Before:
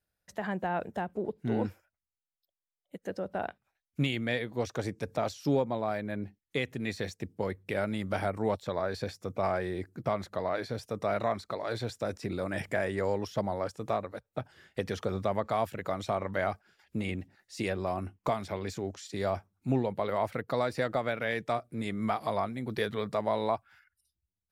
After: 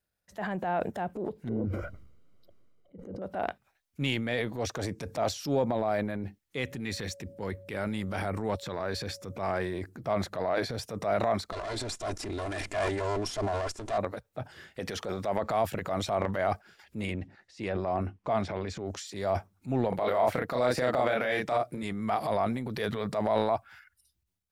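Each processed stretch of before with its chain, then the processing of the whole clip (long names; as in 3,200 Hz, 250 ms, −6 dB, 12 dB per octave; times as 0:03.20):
0:01.49–0:03.22: moving average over 51 samples + level that may fall only so fast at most 28 dB per second
0:06.62–0:09.72: parametric band 640 Hz −6 dB 0.65 octaves + steady tone 560 Hz −57 dBFS
0:11.52–0:13.98: lower of the sound and its delayed copy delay 2.9 ms + low-pass filter 9,000 Hz 24 dB per octave + high-shelf EQ 6,600 Hz +10.5 dB
0:14.79–0:15.43: low-shelf EQ 170 Hz −11 dB + notch filter 1,200 Hz, Q 19
0:17.13–0:18.86: low-pass filter 7,900 Hz + high-shelf EQ 4,500 Hz −10.5 dB
0:19.89–0:21.83: low-shelf EQ 140 Hz −8 dB + double-tracking delay 32 ms −2.5 dB
whole clip: dynamic equaliser 680 Hz, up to +5 dB, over −40 dBFS, Q 2.4; transient designer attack −6 dB, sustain +8 dB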